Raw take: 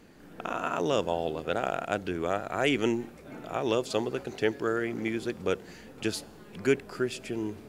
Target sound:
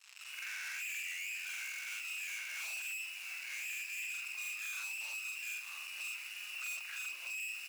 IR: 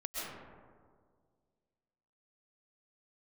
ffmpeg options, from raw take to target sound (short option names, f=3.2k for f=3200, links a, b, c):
-filter_complex "[0:a]afftfilt=real='re':imag='-im':win_size=4096:overlap=0.75,lowpass=f=2.5k:t=q:w=0.5098,lowpass=f=2.5k:t=q:w=0.6013,lowpass=f=2.5k:t=q:w=0.9,lowpass=f=2.5k:t=q:w=2.563,afreqshift=-2900,aeval=exprs='(tanh(200*val(0)+0.4)-tanh(0.4))/200':c=same,acontrast=53,asplit=2[a][b];[b]aecho=0:1:926:0.2[c];[a][c]amix=inputs=2:normalize=0,acrusher=bits=7:mix=0:aa=0.5,acompressor=threshold=-47dB:ratio=2,highpass=930,flanger=delay=8.7:depth=5.2:regen=-76:speed=0.36:shape=sinusoidal,tiltshelf=f=1.2k:g=-6,volume=4.5dB"